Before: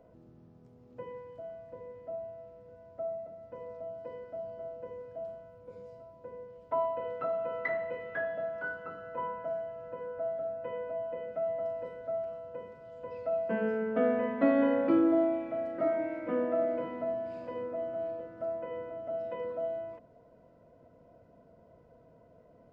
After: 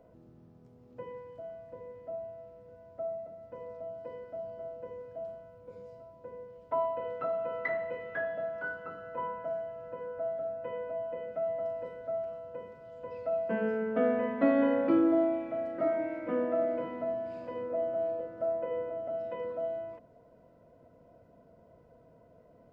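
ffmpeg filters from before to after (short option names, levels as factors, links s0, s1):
-filter_complex "[0:a]asettb=1/sr,asplit=3[s0][s1][s2];[s0]atrim=end=17.704[s3];[s1]atrim=start=17.7:end=19.08,asetpts=PTS-STARTPTS,afade=t=in:d=0.004:c=qsin,afade=t=out:st=1.376:d=0.004:c=qsin,equalizer=f=540:t=o:w=0.77:g=6[s4];[s2]atrim=start=19.076[s5];[s3][s4]acrossfade=d=0.004:c1=hsin:c2=qsin[s6];[s6][s5]acrossfade=d=0.004:c1=qsin:c2=hsin"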